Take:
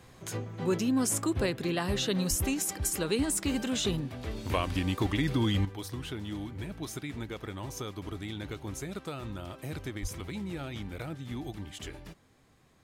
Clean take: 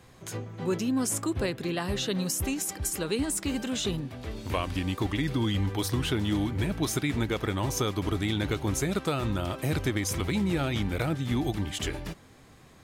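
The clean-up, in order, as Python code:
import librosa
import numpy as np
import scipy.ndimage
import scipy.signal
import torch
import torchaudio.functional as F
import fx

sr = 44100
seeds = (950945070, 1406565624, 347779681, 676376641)

y = fx.highpass(x, sr, hz=140.0, slope=24, at=(2.29, 2.41), fade=0.02)
y = fx.highpass(y, sr, hz=140.0, slope=24, at=(10.01, 10.13), fade=0.02)
y = fx.fix_level(y, sr, at_s=5.65, step_db=10.0)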